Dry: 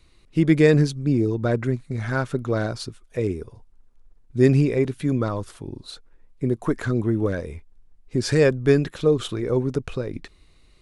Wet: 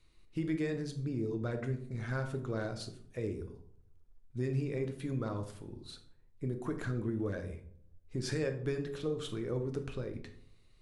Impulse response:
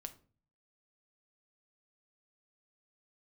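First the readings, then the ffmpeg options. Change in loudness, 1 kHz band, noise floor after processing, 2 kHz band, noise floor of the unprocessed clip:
−15.0 dB, −13.0 dB, −62 dBFS, −14.0 dB, −55 dBFS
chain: -filter_complex "[0:a]bandreject=frequency=46.74:width_type=h:width=4,bandreject=frequency=93.48:width_type=h:width=4,bandreject=frequency=140.22:width_type=h:width=4,bandreject=frequency=186.96:width_type=h:width=4,bandreject=frequency=233.7:width_type=h:width=4,bandreject=frequency=280.44:width_type=h:width=4,bandreject=frequency=327.18:width_type=h:width=4,bandreject=frequency=373.92:width_type=h:width=4,bandreject=frequency=420.66:width_type=h:width=4,bandreject=frequency=467.4:width_type=h:width=4,bandreject=frequency=514.14:width_type=h:width=4,bandreject=frequency=560.88:width_type=h:width=4,bandreject=frequency=607.62:width_type=h:width=4,bandreject=frequency=654.36:width_type=h:width=4,bandreject=frequency=701.1:width_type=h:width=4,bandreject=frequency=747.84:width_type=h:width=4,bandreject=frequency=794.58:width_type=h:width=4,bandreject=frequency=841.32:width_type=h:width=4,bandreject=frequency=888.06:width_type=h:width=4,bandreject=frequency=934.8:width_type=h:width=4,bandreject=frequency=981.54:width_type=h:width=4,bandreject=frequency=1028.28:width_type=h:width=4,bandreject=frequency=1075.02:width_type=h:width=4,bandreject=frequency=1121.76:width_type=h:width=4,acompressor=threshold=-20dB:ratio=6[link_01];[1:a]atrim=start_sample=2205,asetrate=28224,aresample=44100[link_02];[link_01][link_02]afir=irnorm=-1:irlink=0,volume=-8.5dB"

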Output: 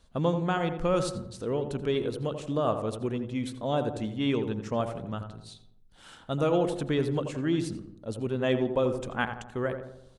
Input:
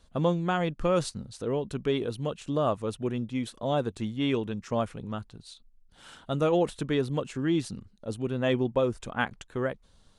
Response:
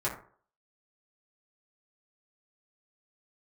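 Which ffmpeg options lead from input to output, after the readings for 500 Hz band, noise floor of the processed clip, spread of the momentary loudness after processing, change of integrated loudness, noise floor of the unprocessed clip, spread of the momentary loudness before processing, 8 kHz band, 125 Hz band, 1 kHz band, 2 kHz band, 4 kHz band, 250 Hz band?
0.0 dB, −56 dBFS, 10 LU, 0.0 dB, −60 dBFS, 11 LU, −1.0 dB, 0.0 dB, 0.0 dB, −0.5 dB, −1.0 dB, 0.0 dB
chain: -filter_complex "[0:a]asplit=2[link_01][link_02];[link_02]adelay=85,lowpass=frequency=1400:poles=1,volume=-7dB,asplit=2[link_03][link_04];[link_04]adelay=85,lowpass=frequency=1400:poles=1,volume=0.54,asplit=2[link_05][link_06];[link_06]adelay=85,lowpass=frequency=1400:poles=1,volume=0.54,asplit=2[link_07][link_08];[link_08]adelay=85,lowpass=frequency=1400:poles=1,volume=0.54,asplit=2[link_09][link_10];[link_10]adelay=85,lowpass=frequency=1400:poles=1,volume=0.54,asplit=2[link_11][link_12];[link_12]adelay=85,lowpass=frequency=1400:poles=1,volume=0.54,asplit=2[link_13][link_14];[link_14]adelay=85,lowpass=frequency=1400:poles=1,volume=0.54[link_15];[link_01][link_03][link_05][link_07][link_09][link_11][link_13][link_15]amix=inputs=8:normalize=0,asplit=2[link_16][link_17];[1:a]atrim=start_sample=2205,asetrate=29106,aresample=44100,adelay=75[link_18];[link_17][link_18]afir=irnorm=-1:irlink=0,volume=-27.5dB[link_19];[link_16][link_19]amix=inputs=2:normalize=0,volume=-1dB"

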